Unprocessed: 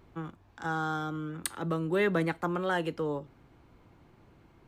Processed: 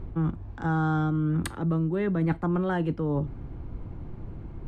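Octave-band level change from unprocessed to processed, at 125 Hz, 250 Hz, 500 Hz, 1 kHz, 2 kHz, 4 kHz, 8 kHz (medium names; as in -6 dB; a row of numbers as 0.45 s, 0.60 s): +11.0 dB, +7.5 dB, 0.0 dB, +1.0 dB, -3.0 dB, -4.5 dB, -5.5 dB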